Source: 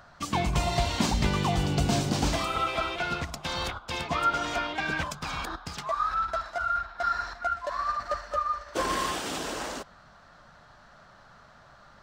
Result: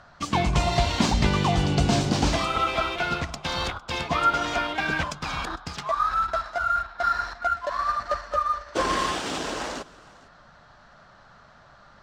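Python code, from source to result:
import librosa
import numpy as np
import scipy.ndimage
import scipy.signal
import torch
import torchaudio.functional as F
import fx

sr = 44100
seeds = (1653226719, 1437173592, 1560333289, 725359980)

p1 = scipy.signal.sosfilt(scipy.signal.butter(2, 7200.0, 'lowpass', fs=sr, output='sos'), x)
p2 = np.sign(p1) * np.maximum(np.abs(p1) - 10.0 ** (-39.5 / 20.0), 0.0)
p3 = p1 + (p2 * 10.0 ** (-8.0 / 20.0))
p4 = p3 + 10.0 ** (-22.5 / 20.0) * np.pad(p3, (int(455 * sr / 1000.0), 0))[:len(p3)]
y = p4 * 10.0 ** (1.5 / 20.0)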